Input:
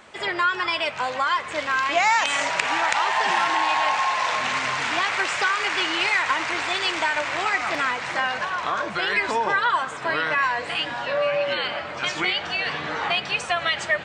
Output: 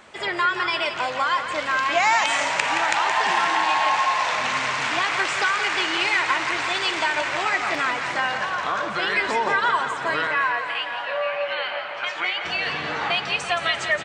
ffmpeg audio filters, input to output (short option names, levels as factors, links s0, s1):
-filter_complex "[0:a]asettb=1/sr,asplit=3[s0][s1][s2];[s0]atrim=end=10.274[s3];[s1]atrim=start=10.27:end=12.45,asetpts=PTS-STARTPTS,afade=t=in:d=0.004:c=qsin,afade=t=out:st=2.176:d=0.004:c=qsin,acrossover=split=510 3400:gain=0.126 1 0.224[s4][s5][s6];[s4][s5][s6]amix=inputs=3:normalize=0[s7];[s2]atrim=start=12.446[s8];[s3][s7]acrossfade=d=0.004:c1=hsin:c2=qsin[s9];[s9][s8]acrossfade=d=0.004:c1=qsin:c2=hsin,aecho=1:1:172|344|516|688|860|1032|1204:0.355|0.206|0.119|0.0692|0.0402|0.0233|0.0135"